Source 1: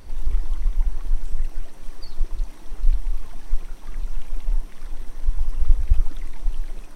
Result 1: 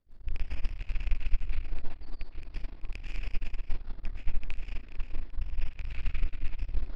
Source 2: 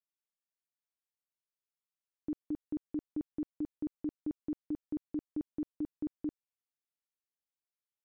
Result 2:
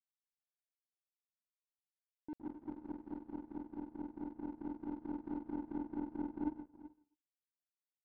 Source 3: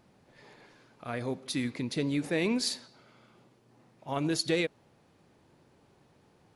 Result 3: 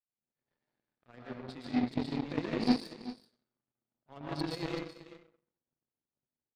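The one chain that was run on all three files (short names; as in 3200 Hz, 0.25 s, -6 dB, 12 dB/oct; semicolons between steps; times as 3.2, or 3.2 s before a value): rattling part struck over -22 dBFS, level -10 dBFS; bell 2900 Hz -3.5 dB 1.5 oct; reverse; compressor 10:1, threshold -23 dBFS; reverse; downsampling 11025 Hz; rotary speaker horn 5 Hz; soft clip -25.5 dBFS; on a send: echo 0.382 s -7.5 dB; on the sum: plate-style reverb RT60 0.92 s, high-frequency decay 0.65×, pre-delay 0.105 s, DRR -4 dB; power-law curve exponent 2; gain +1 dB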